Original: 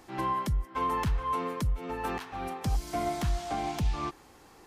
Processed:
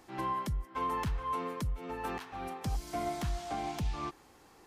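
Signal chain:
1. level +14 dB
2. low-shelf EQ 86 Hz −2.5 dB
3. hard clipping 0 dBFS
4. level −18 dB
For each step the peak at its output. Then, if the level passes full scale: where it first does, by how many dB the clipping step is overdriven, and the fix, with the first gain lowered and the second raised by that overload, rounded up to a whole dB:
−5.5, −6.0, −6.0, −24.0 dBFS
no step passes full scale

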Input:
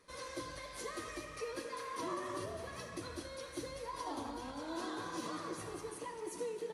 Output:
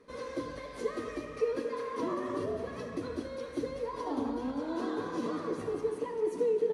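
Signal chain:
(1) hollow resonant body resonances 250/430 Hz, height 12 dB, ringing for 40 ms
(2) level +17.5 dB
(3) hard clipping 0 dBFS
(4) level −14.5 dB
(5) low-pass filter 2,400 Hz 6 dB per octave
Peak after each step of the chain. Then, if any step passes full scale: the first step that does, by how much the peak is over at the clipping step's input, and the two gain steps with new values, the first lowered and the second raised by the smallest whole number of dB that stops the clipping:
−21.5, −4.0, −4.0, −18.5, −19.0 dBFS
no step passes full scale

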